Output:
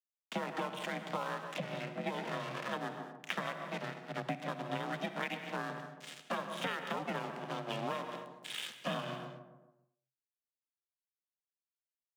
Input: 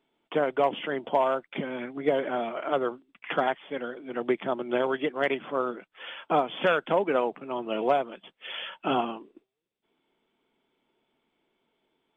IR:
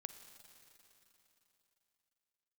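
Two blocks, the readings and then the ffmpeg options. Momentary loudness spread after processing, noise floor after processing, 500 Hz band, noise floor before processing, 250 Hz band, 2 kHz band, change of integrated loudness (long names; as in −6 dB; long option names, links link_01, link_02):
6 LU, below −85 dBFS, −14.5 dB, −82 dBFS, −9.5 dB, −7.0 dB, −11.0 dB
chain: -filter_complex "[0:a]aeval=exprs='sgn(val(0))*max(abs(val(0))-0.0112,0)':channel_layout=same,equalizer=frequency=125:width_type=o:width=1:gain=5,equalizer=frequency=500:width_type=o:width=1:gain=-10,equalizer=frequency=1000:width_type=o:width=1:gain=-5,asplit=2[link_01][link_02];[link_02]adelay=140,lowpass=frequency=1200:poles=1,volume=-12dB,asplit=2[link_03][link_04];[link_04]adelay=140,lowpass=frequency=1200:poles=1,volume=0.5,asplit=2[link_05][link_06];[link_06]adelay=140,lowpass=frequency=1200:poles=1,volume=0.5,asplit=2[link_07][link_08];[link_08]adelay=140,lowpass=frequency=1200:poles=1,volume=0.5,asplit=2[link_09][link_10];[link_10]adelay=140,lowpass=frequency=1200:poles=1,volume=0.5[link_11];[link_01][link_03][link_05][link_07][link_09][link_11]amix=inputs=6:normalize=0[link_12];[1:a]atrim=start_sample=2205,afade=type=out:start_time=0.29:duration=0.01,atrim=end_sample=13230[link_13];[link_12][link_13]afir=irnorm=-1:irlink=0,acompressor=threshold=-41dB:ratio=6,aeval=exprs='val(0)*sin(2*PI*230*n/s)':channel_layout=same,afreqshift=130,volume=10dB"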